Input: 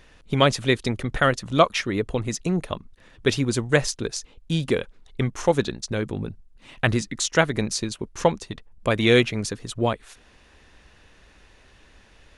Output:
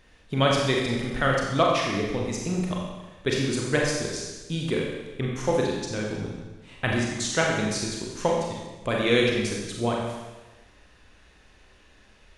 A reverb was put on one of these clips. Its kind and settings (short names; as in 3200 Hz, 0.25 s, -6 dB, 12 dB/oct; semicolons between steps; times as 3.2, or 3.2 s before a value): Schroeder reverb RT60 1.2 s, combs from 30 ms, DRR -2 dB; gain -6 dB